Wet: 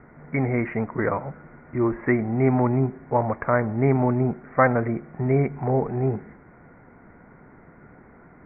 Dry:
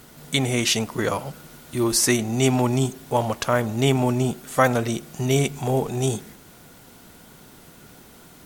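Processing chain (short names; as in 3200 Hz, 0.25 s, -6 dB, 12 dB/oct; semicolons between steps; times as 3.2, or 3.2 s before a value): steep low-pass 2200 Hz 96 dB/oct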